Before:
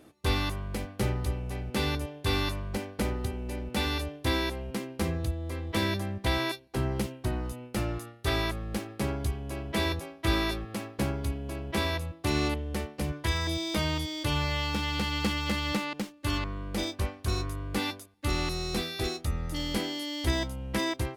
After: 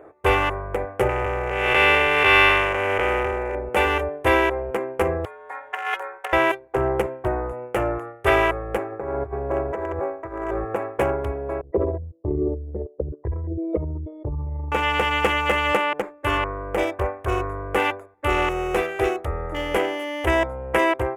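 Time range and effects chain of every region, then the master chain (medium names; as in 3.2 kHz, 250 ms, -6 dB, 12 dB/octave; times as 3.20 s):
1.09–3.55 s: spectral blur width 342 ms + peaking EQ 2.5 kHz +13.5 dB 2.5 oct
5.25–6.33 s: high-pass 980 Hz 24 dB/octave + compressor with a negative ratio -36 dBFS, ratio -0.5 + frequency shift -230 Hz
8.92–10.76 s: median filter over 15 samples + compressor with a negative ratio -35 dBFS
11.61–14.72 s: resonances exaggerated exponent 3 + gate -36 dBFS, range -17 dB + low-pass 1.6 kHz 6 dB/octave
whole clip: local Wiener filter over 15 samples; FFT filter 100 Hz 0 dB, 230 Hz -9 dB, 420 Hz +14 dB, 2.9 kHz +11 dB, 4.2 kHz -13 dB, 7.3 kHz +3 dB; trim +2 dB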